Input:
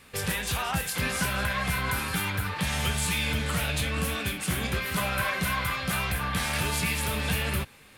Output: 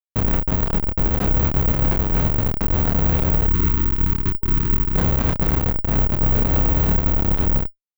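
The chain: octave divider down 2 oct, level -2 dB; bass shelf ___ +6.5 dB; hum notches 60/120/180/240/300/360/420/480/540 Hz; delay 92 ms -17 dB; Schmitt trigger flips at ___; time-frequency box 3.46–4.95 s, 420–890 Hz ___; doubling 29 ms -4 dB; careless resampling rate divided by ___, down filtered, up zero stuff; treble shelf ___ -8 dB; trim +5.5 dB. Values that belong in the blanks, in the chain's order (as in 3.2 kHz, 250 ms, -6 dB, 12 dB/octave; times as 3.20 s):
120 Hz, -21.5 dBFS, -27 dB, 2×, 2.3 kHz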